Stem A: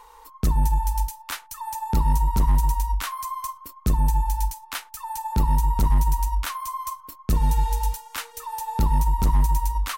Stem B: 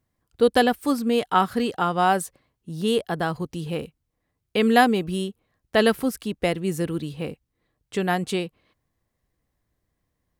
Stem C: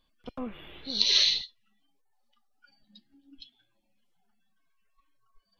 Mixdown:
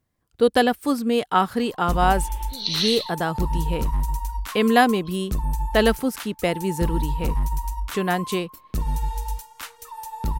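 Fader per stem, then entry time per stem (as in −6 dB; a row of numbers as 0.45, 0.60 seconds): −4.5, +0.5, −1.5 decibels; 1.45, 0.00, 1.65 seconds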